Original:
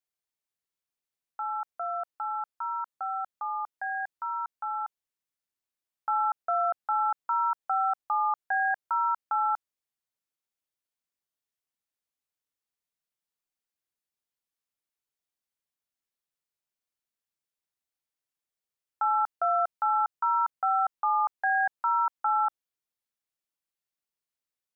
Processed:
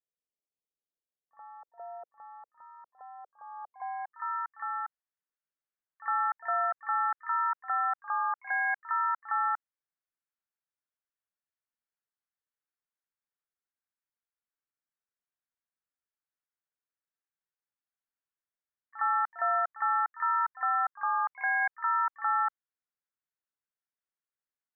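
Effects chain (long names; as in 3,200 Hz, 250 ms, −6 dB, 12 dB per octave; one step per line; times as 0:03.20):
low-pass filter sweep 500 Hz → 1,600 Hz, 0:03.37–0:04.49
pitch-shifted copies added +5 semitones −11 dB
echo ahead of the sound 59 ms −16.5 dB
level −8 dB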